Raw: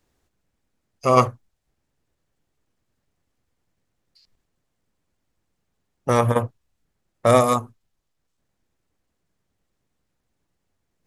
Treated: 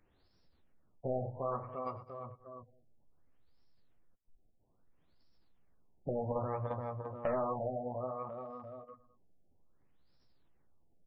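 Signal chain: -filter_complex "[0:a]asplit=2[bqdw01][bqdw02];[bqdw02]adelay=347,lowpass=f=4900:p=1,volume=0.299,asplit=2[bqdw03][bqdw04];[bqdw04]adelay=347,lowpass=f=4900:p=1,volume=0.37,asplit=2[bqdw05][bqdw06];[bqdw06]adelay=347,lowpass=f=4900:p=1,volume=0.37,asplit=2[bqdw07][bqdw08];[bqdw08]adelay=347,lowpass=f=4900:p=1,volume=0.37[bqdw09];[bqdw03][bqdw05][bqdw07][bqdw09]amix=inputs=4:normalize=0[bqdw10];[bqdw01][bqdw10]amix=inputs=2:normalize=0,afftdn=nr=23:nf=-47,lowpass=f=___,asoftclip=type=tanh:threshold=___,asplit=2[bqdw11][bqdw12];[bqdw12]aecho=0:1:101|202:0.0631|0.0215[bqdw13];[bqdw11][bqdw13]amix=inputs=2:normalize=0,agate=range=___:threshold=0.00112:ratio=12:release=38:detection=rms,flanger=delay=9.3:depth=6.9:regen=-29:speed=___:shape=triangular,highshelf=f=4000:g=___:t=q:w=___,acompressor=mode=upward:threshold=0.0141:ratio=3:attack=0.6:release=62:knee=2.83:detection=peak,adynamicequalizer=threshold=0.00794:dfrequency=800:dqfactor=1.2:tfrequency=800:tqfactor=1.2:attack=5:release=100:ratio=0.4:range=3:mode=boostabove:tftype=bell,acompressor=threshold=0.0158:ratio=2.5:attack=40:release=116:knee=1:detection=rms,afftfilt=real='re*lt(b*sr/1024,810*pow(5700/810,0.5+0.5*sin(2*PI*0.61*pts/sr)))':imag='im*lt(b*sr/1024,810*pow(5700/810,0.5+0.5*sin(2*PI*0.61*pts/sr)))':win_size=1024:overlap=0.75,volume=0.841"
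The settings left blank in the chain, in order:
11000, 0.141, 0.126, 0.44, 12, 1.5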